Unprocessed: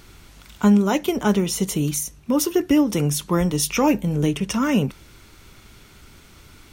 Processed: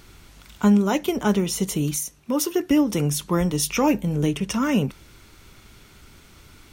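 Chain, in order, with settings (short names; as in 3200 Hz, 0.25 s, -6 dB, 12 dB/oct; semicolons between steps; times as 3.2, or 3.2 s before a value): 1.96–2.71 low shelf 140 Hz -11.5 dB; gain -1.5 dB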